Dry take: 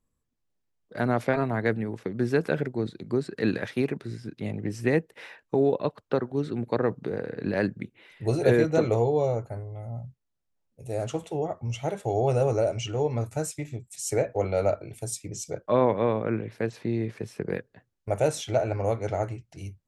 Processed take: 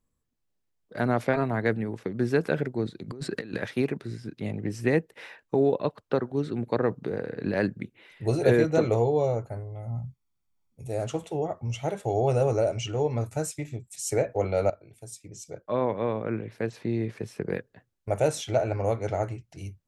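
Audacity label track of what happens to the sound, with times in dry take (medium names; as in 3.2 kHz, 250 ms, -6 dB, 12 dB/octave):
3.080000	3.560000	compressor with a negative ratio -36 dBFS
9.870000	10.880000	comb 0.9 ms, depth 56%
14.700000	17.030000	fade in, from -14 dB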